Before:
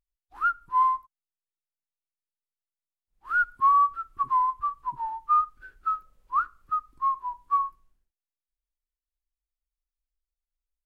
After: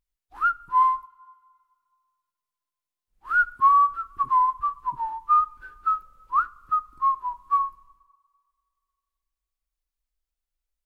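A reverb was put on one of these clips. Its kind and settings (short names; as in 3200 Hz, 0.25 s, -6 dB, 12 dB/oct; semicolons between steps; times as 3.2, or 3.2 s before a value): two-slope reverb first 0.24 s, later 2 s, from -18 dB, DRR 16 dB; gain +3 dB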